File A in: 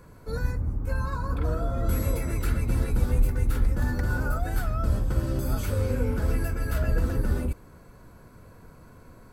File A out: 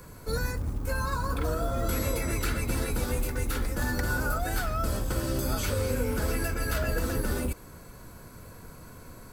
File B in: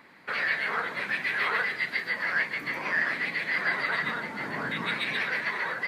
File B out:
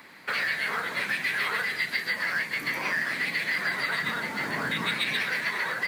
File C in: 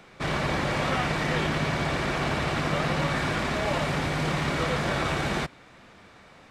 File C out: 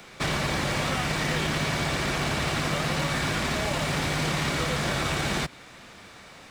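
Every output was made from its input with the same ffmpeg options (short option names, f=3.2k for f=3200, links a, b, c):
-filter_complex "[0:a]acrossover=split=250|6300[a][b][c];[a]acompressor=threshold=-31dB:ratio=4[d];[b]acompressor=threshold=-31dB:ratio=4[e];[c]acompressor=threshold=-53dB:ratio=4[f];[d][e][f]amix=inputs=3:normalize=0,highshelf=f=3.3k:g=10.5,acrusher=bits=7:mode=log:mix=0:aa=0.000001,volume=2.5dB"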